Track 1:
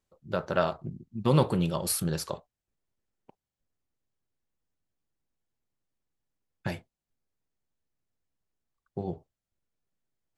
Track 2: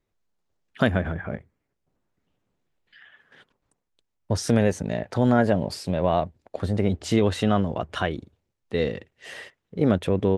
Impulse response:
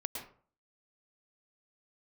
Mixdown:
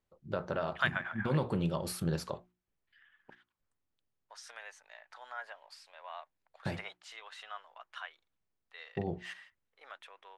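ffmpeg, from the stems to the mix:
-filter_complex "[0:a]alimiter=limit=0.112:level=0:latency=1:release=208,volume=0.891,asplit=2[s0][s1];[1:a]highpass=f=1000:w=0.5412,highpass=f=1000:w=1.3066,volume=0.891[s2];[s1]apad=whole_len=457376[s3];[s2][s3]sidechaingate=range=0.282:threshold=0.00126:ratio=16:detection=peak[s4];[s0][s4]amix=inputs=2:normalize=0,highshelf=f=5200:g=-12,bandreject=f=60:t=h:w=6,bandreject=f=120:t=h:w=6,bandreject=f=180:t=h:w=6,bandreject=f=240:t=h:w=6,bandreject=f=300:t=h:w=6,bandreject=f=360:t=h:w=6"

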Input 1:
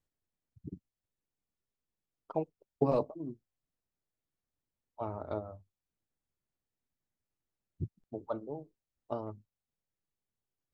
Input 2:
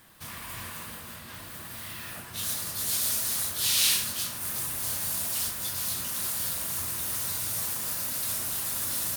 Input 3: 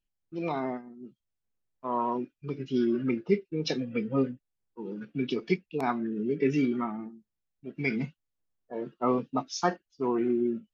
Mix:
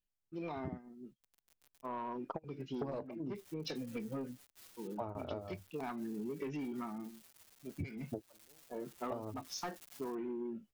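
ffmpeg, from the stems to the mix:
-filter_complex "[0:a]aeval=exprs='0.178*sin(PI/2*1.41*val(0)/0.178)':c=same,volume=1.19[s0];[1:a]acompressor=threshold=0.02:ratio=20,acrusher=bits=4:mix=0:aa=0.000001,asplit=2[s1][s2];[s2]adelay=5.7,afreqshift=-2.2[s3];[s1][s3]amix=inputs=2:normalize=1,adelay=1000,volume=0.355,afade=t=in:st=8.88:d=0.22:silence=0.473151[s4];[2:a]asoftclip=type=tanh:threshold=0.0794,volume=0.501,asplit=2[s5][s6];[s6]apad=whole_len=473451[s7];[s0][s7]sidechaingate=range=0.0141:threshold=0.00178:ratio=16:detection=peak[s8];[s8][s4][s5]amix=inputs=3:normalize=0,acompressor=threshold=0.0141:ratio=20"

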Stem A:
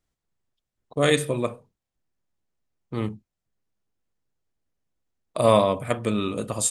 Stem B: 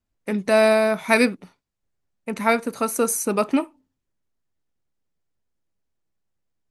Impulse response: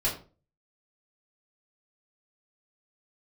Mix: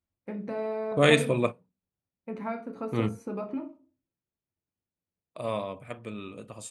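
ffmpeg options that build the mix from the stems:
-filter_complex "[0:a]equalizer=f=2500:t=o:w=0.41:g=6,volume=1[s0];[1:a]lowpass=f=1200:p=1,equalizer=f=250:t=o:w=2.3:g=3.5,acompressor=threshold=0.0794:ratio=4,volume=0.237,asplit=3[s1][s2][s3];[s2]volume=0.355[s4];[s3]apad=whole_len=295803[s5];[s0][s5]sidechaingate=range=0.2:threshold=0.00141:ratio=16:detection=peak[s6];[2:a]atrim=start_sample=2205[s7];[s4][s7]afir=irnorm=-1:irlink=0[s8];[s6][s1][s8]amix=inputs=3:normalize=0,highpass=53,highshelf=f=6300:g=-8.5"

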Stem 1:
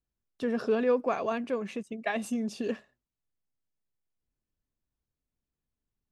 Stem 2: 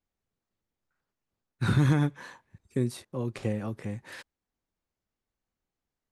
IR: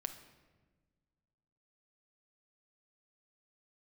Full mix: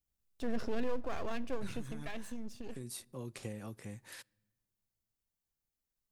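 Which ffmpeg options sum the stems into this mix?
-filter_complex "[0:a]aeval=exprs='if(lt(val(0),0),0.251*val(0),val(0))':c=same,alimiter=limit=0.0708:level=0:latency=1:release=40,lowshelf=f=190:g=11,volume=0.355,afade=t=out:st=1.89:d=0.35:silence=0.421697,asplit=3[s0][s1][s2];[s1]volume=0.376[s3];[1:a]highshelf=f=8400:g=9,acompressor=threshold=0.0501:ratio=6,volume=0.266,asplit=2[s4][s5];[s5]volume=0.119[s6];[s2]apad=whole_len=269494[s7];[s4][s7]sidechaincompress=threshold=0.00447:ratio=8:attack=5.9:release=311[s8];[2:a]atrim=start_sample=2205[s9];[s3][s6]amix=inputs=2:normalize=0[s10];[s10][s9]afir=irnorm=-1:irlink=0[s11];[s0][s8][s11]amix=inputs=3:normalize=0,highshelf=f=3200:g=9"

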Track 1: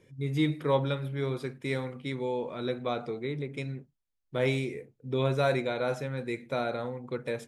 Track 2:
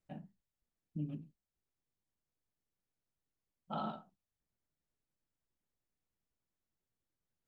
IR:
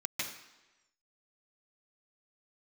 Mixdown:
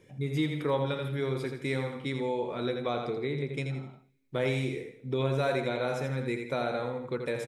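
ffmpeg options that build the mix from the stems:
-filter_complex "[0:a]volume=1.26,asplit=3[s0][s1][s2];[s1]volume=0.0841[s3];[s2]volume=0.473[s4];[1:a]alimiter=level_in=8.41:limit=0.0631:level=0:latency=1:release=372,volume=0.119,volume=0.75[s5];[2:a]atrim=start_sample=2205[s6];[s3][s6]afir=irnorm=-1:irlink=0[s7];[s4]aecho=0:1:83|166|249|332|415:1|0.32|0.102|0.0328|0.0105[s8];[s0][s5][s7][s8]amix=inputs=4:normalize=0,acompressor=threshold=0.0398:ratio=2"

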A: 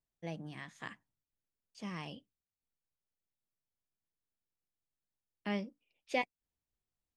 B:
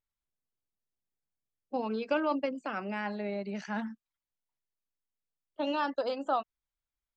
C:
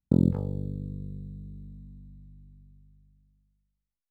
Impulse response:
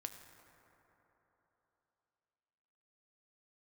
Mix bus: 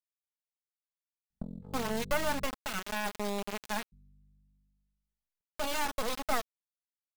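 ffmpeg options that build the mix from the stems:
-filter_complex "[1:a]highpass=300,acrusher=bits=3:dc=4:mix=0:aa=0.000001,volume=1.26[s0];[2:a]acompressor=threshold=0.0282:ratio=16,aeval=exprs='(tanh(17.8*val(0)+0.7)-tanh(0.7))/17.8':c=same,adelay=1300,volume=0.794,asplit=3[s1][s2][s3];[s1]atrim=end=2.45,asetpts=PTS-STARTPTS,afade=t=out:st=2.446:d=0.004:c=hsin[s4];[s2]atrim=start=2.45:end=3.92,asetpts=PTS-STARTPTS,volume=0[s5];[s3]atrim=start=3.92,asetpts=PTS-STARTPTS,afade=t=in:d=0.004:c=hsin[s6];[s4][s5][s6]concat=n=3:v=0:a=1[s7];[s0][s7]amix=inputs=2:normalize=0,aecho=1:1:4.7:0.4"

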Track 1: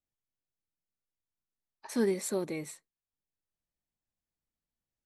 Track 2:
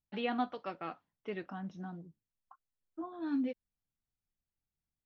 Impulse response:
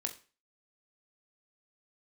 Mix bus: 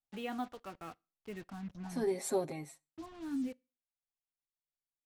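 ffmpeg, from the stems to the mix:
-filter_complex "[0:a]agate=range=0.447:threshold=0.00398:ratio=16:detection=peak,equalizer=f=740:w=3.9:g=14,aecho=1:1:7.4:0.81,volume=0.501,afade=t=out:st=2.34:d=0.49:silence=0.281838,asplit=2[s0][s1];[s1]volume=0.178[s2];[1:a]acrusher=bits=7:mix=0:aa=0.5,asubboost=boost=3.5:cutoff=200,bandreject=f=550:w=14,volume=0.473,asplit=3[s3][s4][s5];[s4]volume=0.0944[s6];[s5]apad=whole_len=223340[s7];[s0][s7]sidechaincompress=threshold=0.00224:ratio=8:attack=16:release=467[s8];[2:a]atrim=start_sample=2205[s9];[s2][s6]amix=inputs=2:normalize=0[s10];[s10][s9]afir=irnorm=-1:irlink=0[s11];[s8][s3][s11]amix=inputs=3:normalize=0,lowshelf=f=230:g=4"

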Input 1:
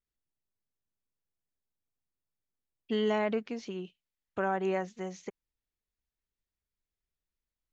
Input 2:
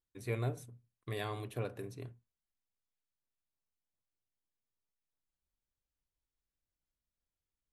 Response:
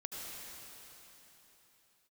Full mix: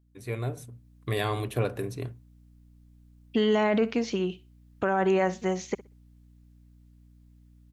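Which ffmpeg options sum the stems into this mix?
-filter_complex "[0:a]adelay=450,volume=1.19,asplit=2[s0][s1];[s1]volume=0.112[s2];[1:a]aeval=exprs='val(0)+0.000562*(sin(2*PI*60*n/s)+sin(2*PI*2*60*n/s)/2+sin(2*PI*3*60*n/s)/3+sin(2*PI*4*60*n/s)/4+sin(2*PI*5*60*n/s)/5)':c=same,volume=1.26[s3];[s2]aecho=0:1:62|124|186:1|0.2|0.04[s4];[s0][s3][s4]amix=inputs=3:normalize=0,dynaudnorm=f=470:g=3:m=2.82,alimiter=limit=0.178:level=0:latency=1:release=20"

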